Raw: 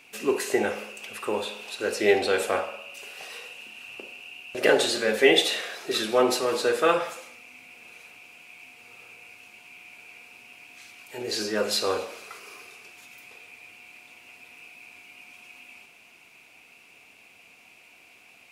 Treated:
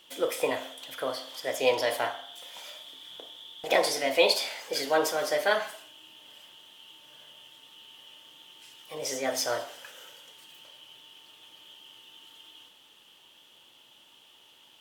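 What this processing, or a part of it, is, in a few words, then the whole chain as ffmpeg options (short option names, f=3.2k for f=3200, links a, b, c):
nightcore: -af "asetrate=55125,aresample=44100,volume=-3.5dB"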